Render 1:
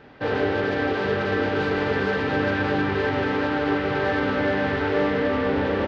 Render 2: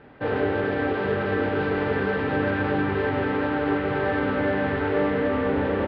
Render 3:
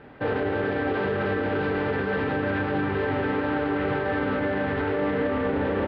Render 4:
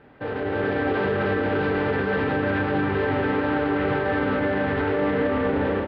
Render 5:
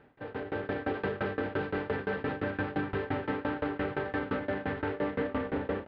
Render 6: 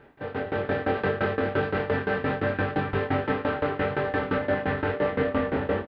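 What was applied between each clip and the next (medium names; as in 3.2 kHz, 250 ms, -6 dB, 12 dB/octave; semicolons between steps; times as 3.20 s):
distance through air 290 m
peak limiter -19.5 dBFS, peak gain reduction 8 dB; trim +2 dB
level rider gain up to 7 dB; trim -4.5 dB
tremolo saw down 5.8 Hz, depth 95%; trim -5.5 dB
doubling 22 ms -3 dB; trim +5.5 dB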